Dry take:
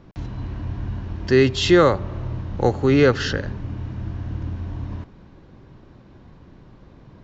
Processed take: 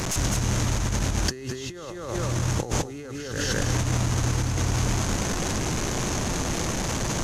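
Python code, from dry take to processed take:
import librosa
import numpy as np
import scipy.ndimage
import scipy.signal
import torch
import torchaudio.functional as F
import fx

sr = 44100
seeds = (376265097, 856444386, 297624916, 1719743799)

y = fx.delta_mod(x, sr, bps=64000, step_db=-28.0)
y = fx.echo_feedback(y, sr, ms=205, feedback_pct=21, wet_db=-3.5)
y = fx.over_compress(y, sr, threshold_db=-28.0, ratio=-1.0)
y = fx.peak_eq(y, sr, hz=6400.0, db=14.0, octaves=0.41)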